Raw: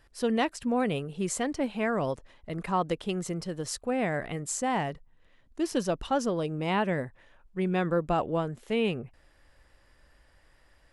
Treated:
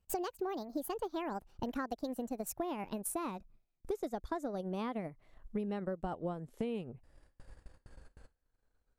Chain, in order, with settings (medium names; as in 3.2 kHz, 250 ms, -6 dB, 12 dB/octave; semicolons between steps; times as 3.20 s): gliding tape speed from 160% -> 83%; bass shelf 350 Hz +3 dB; gate with hold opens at -48 dBFS; transient shaper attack +3 dB, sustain -8 dB; peaking EQ 2.6 kHz -8 dB 2.4 oct; compression 6:1, threshold -39 dBFS, peak gain reduction 17 dB; trim +3.5 dB